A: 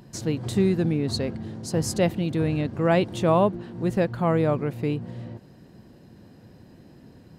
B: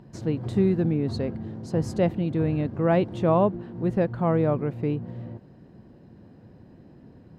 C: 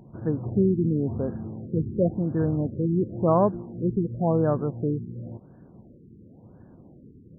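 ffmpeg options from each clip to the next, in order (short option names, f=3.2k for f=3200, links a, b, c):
-af "lowpass=f=1.3k:p=1"
-af "lowpass=f=3.1k:t=q:w=4.9,afftfilt=real='re*lt(b*sr/1024,450*pow(1800/450,0.5+0.5*sin(2*PI*0.94*pts/sr)))':imag='im*lt(b*sr/1024,450*pow(1800/450,0.5+0.5*sin(2*PI*0.94*pts/sr)))':win_size=1024:overlap=0.75"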